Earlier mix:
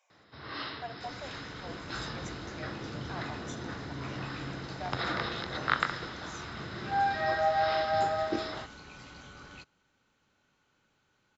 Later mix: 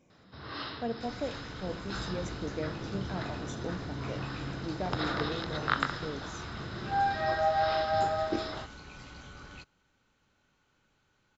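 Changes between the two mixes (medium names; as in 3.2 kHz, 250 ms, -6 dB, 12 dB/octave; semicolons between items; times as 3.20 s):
speech: remove steep high-pass 670 Hz; first sound: add peaking EQ 2.1 kHz -4.5 dB 0.51 oct; master: add bass shelf 65 Hz +10.5 dB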